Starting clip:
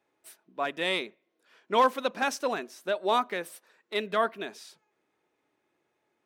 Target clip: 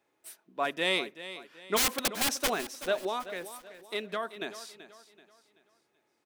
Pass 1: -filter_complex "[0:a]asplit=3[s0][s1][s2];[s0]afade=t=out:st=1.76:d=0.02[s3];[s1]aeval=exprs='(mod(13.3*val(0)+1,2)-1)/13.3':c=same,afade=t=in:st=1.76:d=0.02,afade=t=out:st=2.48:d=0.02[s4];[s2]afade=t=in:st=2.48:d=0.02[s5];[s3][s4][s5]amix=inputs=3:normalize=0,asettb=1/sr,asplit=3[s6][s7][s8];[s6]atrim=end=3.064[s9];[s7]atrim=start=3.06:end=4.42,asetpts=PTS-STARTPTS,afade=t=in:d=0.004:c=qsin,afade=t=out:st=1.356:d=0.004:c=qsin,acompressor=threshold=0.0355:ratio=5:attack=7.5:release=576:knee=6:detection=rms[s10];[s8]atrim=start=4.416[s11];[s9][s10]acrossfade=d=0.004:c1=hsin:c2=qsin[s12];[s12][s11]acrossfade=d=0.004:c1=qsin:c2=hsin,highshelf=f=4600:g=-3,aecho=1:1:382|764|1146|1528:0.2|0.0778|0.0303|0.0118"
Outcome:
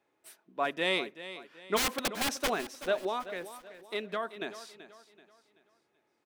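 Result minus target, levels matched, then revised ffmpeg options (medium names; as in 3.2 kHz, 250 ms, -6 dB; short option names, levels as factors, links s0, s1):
8 kHz band -3.5 dB
-filter_complex "[0:a]asplit=3[s0][s1][s2];[s0]afade=t=out:st=1.76:d=0.02[s3];[s1]aeval=exprs='(mod(13.3*val(0)+1,2)-1)/13.3':c=same,afade=t=in:st=1.76:d=0.02,afade=t=out:st=2.48:d=0.02[s4];[s2]afade=t=in:st=2.48:d=0.02[s5];[s3][s4][s5]amix=inputs=3:normalize=0,asettb=1/sr,asplit=3[s6][s7][s8];[s6]atrim=end=3.064[s9];[s7]atrim=start=3.06:end=4.42,asetpts=PTS-STARTPTS,afade=t=in:d=0.004:c=qsin,afade=t=out:st=1.356:d=0.004:c=qsin,acompressor=threshold=0.0355:ratio=5:attack=7.5:release=576:knee=6:detection=rms[s10];[s8]atrim=start=4.416[s11];[s9][s10]acrossfade=d=0.004:c1=hsin:c2=qsin[s12];[s12][s11]acrossfade=d=0.004:c1=qsin:c2=hsin,highshelf=f=4600:g=4,aecho=1:1:382|764|1146|1528:0.2|0.0778|0.0303|0.0118"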